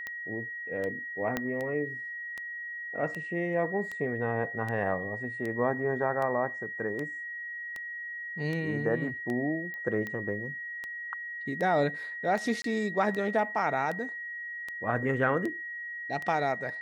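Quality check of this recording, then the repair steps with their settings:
scratch tick 78 rpm −23 dBFS
whistle 1,900 Hz −36 dBFS
0:01.37: click −15 dBFS
0:09.74: click −28 dBFS
0:12.62–0:12.64: drop-out 23 ms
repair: click removal
notch filter 1,900 Hz, Q 30
repair the gap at 0:12.62, 23 ms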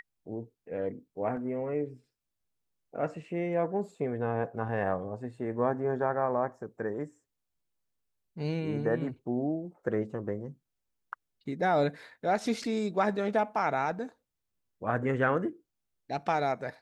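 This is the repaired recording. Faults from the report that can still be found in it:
0:01.37: click

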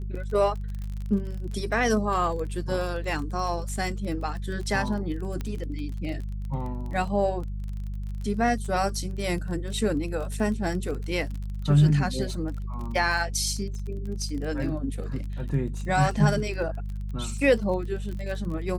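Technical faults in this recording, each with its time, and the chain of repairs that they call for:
surface crackle 24 per second −33 dBFS
mains hum 50 Hz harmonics 4 −32 dBFS
0:05.41: click −19 dBFS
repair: click removal
hum removal 50 Hz, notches 4

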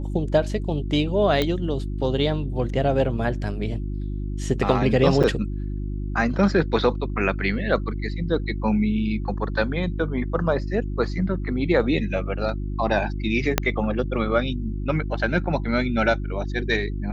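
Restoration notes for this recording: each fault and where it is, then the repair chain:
mains hum 50 Hz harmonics 7 −28 dBFS
0:01.42: click −9 dBFS
0:05.23–0:05.24: drop-out 6.8 ms
0:13.58: click −2 dBFS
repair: click removal
hum removal 50 Hz, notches 7
repair the gap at 0:05.23, 6.8 ms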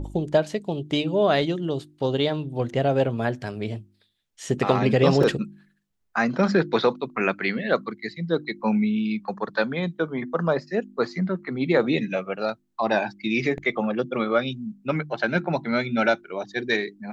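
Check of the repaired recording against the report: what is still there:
0:13.58: click

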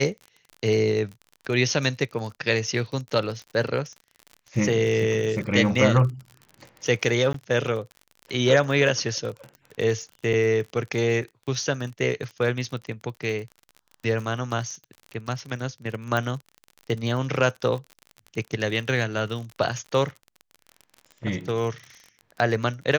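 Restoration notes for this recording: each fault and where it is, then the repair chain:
surface crackle 41 per second −33 dBFS
0:07.33–0:07.34: drop-out 13 ms
0:10.33–0:10.34: drop-out 6.3 ms
0:16.17: click −13 dBFS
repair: click removal
repair the gap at 0:07.33, 13 ms
repair the gap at 0:10.33, 6.3 ms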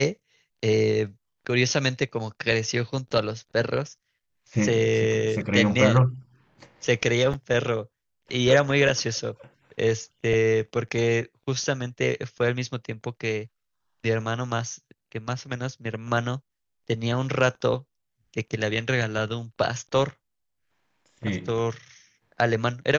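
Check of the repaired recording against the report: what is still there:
0:16.17: click

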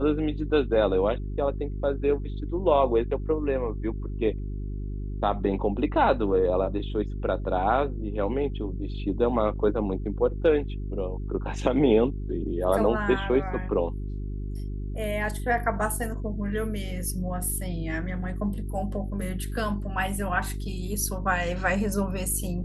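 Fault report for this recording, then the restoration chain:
mains hum 50 Hz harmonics 8 −32 dBFS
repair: hum removal 50 Hz, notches 8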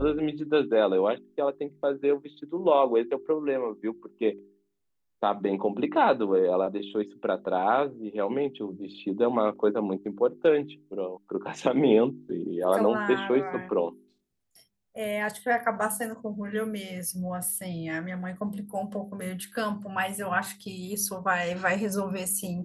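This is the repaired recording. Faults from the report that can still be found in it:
none of them is left

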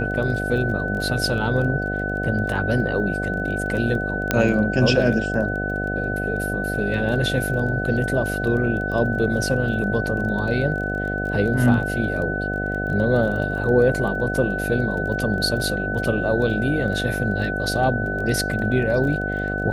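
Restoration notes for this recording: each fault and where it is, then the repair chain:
mains buzz 50 Hz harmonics 15 −27 dBFS
surface crackle 20 per second −30 dBFS
whistle 1,500 Hz −26 dBFS
0:04.31: click −4 dBFS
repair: click removal
hum removal 50 Hz, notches 15
notch filter 1,500 Hz, Q 30

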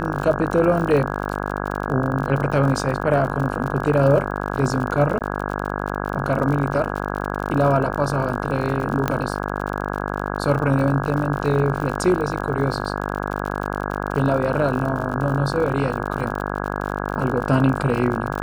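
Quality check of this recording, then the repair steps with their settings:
mains buzz 50 Hz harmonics 33 −26 dBFS
surface crackle 52 per second −27 dBFS
0:05.19–0:05.21: drop-out 18 ms
0:09.08: click −7 dBFS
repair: click removal
hum removal 50 Hz, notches 33
repair the gap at 0:05.19, 18 ms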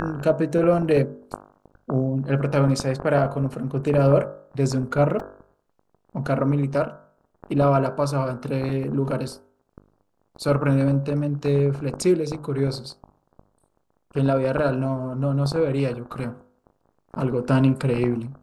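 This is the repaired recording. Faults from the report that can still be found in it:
none of them is left

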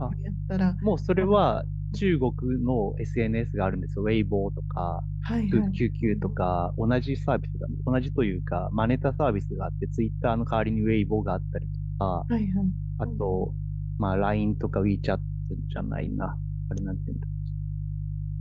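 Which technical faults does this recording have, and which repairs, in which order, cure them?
mains hum 50 Hz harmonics 3 −31 dBFS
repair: hum removal 50 Hz, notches 3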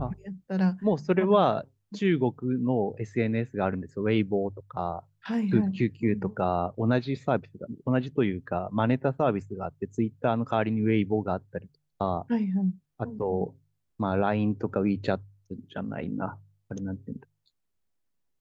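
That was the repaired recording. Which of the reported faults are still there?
none of them is left

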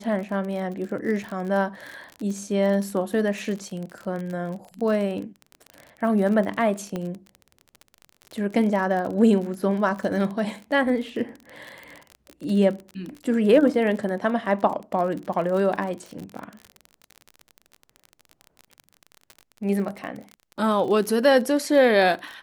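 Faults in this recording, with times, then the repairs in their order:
surface crackle 37 per second −30 dBFS
0:06.96: click −17 dBFS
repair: click removal

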